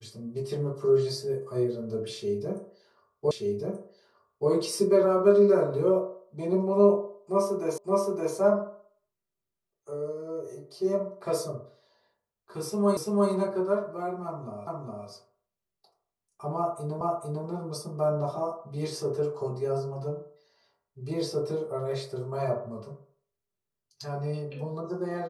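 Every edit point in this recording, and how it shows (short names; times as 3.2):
3.31 repeat of the last 1.18 s
7.78 repeat of the last 0.57 s
12.97 repeat of the last 0.34 s
14.67 repeat of the last 0.41 s
17.01 repeat of the last 0.45 s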